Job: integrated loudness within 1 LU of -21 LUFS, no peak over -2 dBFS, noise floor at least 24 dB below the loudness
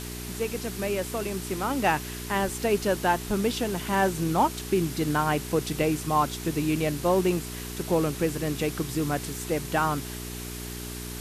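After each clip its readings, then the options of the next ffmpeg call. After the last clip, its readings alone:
hum 60 Hz; harmonics up to 420 Hz; hum level -35 dBFS; noise floor -37 dBFS; noise floor target -52 dBFS; loudness -27.5 LUFS; peak -10.5 dBFS; loudness target -21.0 LUFS
-> -af "bandreject=f=60:t=h:w=4,bandreject=f=120:t=h:w=4,bandreject=f=180:t=h:w=4,bandreject=f=240:t=h:w=4,bandreject=f=300:t=h:w=4,bandreject=f=360:t=h:w=4,bandreject=f=420:t=h:w=4"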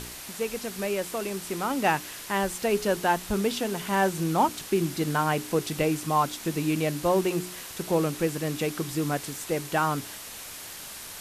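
hum none; noise floor -41 dBFS; noise floor target -52 dBFS
-> -af "afftdn=nr=11:nf=-41"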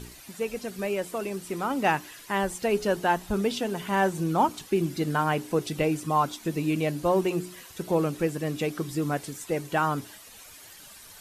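noise floor -48 dBFS; noise floor target -52 dBFS
-> -af "afftdn=nr=6:nf=-48"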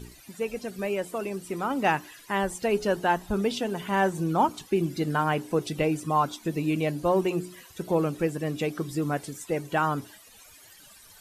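noise floor -52 dBFS; loudness -28.0 LUFS; peak -10.5 dBFS; loudness target -21.0 LUFS
-> -af "volume=7dB"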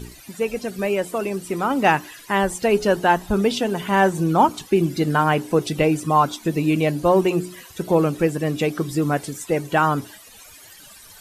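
loudness -21.0 LUFS; peak -3.5 dBFS; noise floor -45 dBFS

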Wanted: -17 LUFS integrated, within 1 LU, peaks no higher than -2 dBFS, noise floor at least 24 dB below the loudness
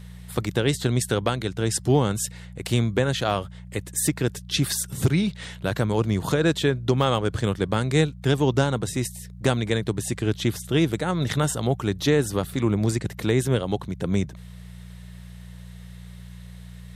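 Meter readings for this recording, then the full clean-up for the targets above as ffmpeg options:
hum 60 Hz; harmonics up to 180 Hz; hum level -40 dBFS; loudness -24.5 LUFS; peak -7.0 dBFS; loudness target -17.0 LUFS
-> -af "bandreject=f=60:t=h:w=4,bandreject=f=120:t=h:w=4,bandreject=f=180:t=h:w=4"
-af "volume=7.5dB,alimiter=limit=-2dB:level=0:latency=1"

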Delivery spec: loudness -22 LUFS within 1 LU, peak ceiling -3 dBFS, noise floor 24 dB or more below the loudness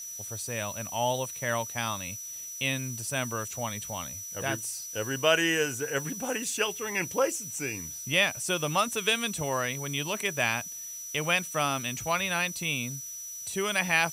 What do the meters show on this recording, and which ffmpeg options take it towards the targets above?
steady tone 5900 Hz; tone level -38 dBFS; noise floor -40 dBFS; noise floor target -54 dBFS; loudness -29.5 LUFS; peak -9.0 dBFS; loudness target -22.0 LUFS
-> -af "bandreject=f=5.9k:w=30"
-af "afftdn=nr=14:nf=-40"
-af "volume=7.5dB,alimiter=limit=-3dB:level=0:latency=1"

